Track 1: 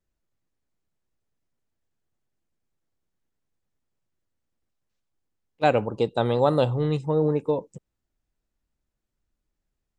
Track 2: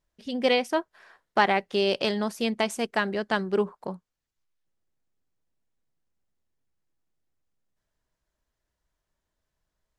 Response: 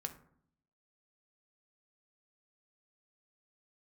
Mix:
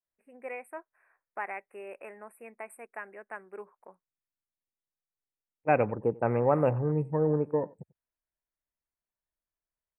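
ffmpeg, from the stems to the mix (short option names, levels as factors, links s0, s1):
-filter_complex "[0:a]afwtdn=0.0112,adelay=50,volume=0.631,asplit=2[s0][s1];[s1]volume=0.075[s2];[1:a]highpass=460,volume=0.188[s3];[s2]aecho=0:1:92:1[s4];[s0][s3][s4]amix=inputs=3:normalize=0,asuperstop=centerf=4700:order=20:qfactor=0.83,adynamicequalizer=threshold=0.00631:dfrequency=2100:dqfactor=0.7:tfrequency=2100:tqfactor=0.7:attack=5:release=100:ratio=0.375:range=3:mode=boostabove:tftype=highshelf"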